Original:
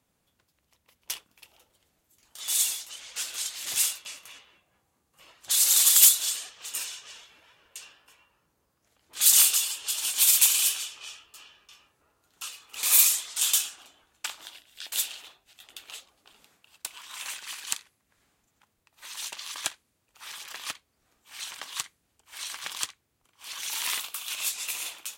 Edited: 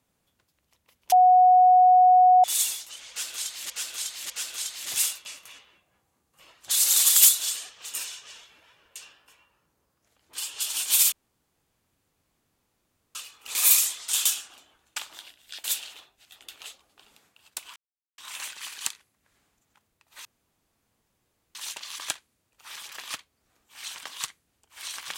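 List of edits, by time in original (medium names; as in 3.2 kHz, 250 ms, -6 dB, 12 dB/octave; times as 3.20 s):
1.12–2.44 s: bleep 734 Hz -12.5 dBFS
3.10–3.70 s: loop, 3 plays
9.18–9.66 s: delete
10.40–12.43 s: room tone
17.04 s: insert silence 0.42 s
19.11 s: insert room tone 1.30 s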